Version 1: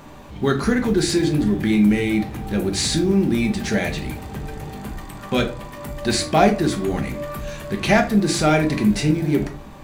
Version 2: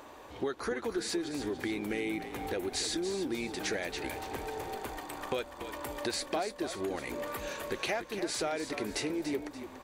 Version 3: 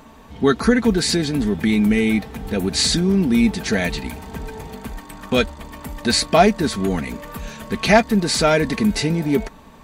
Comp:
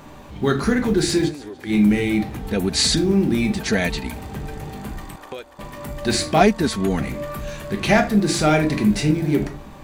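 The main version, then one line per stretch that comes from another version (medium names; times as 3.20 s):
1
1.30–1.70 s: from 2, crossfade 0.10 s
2.39–2.97 s: from 3
3.59–4.16 s: from 3
5.16–5.59 s: from 2
6.41–7.00 s: from 3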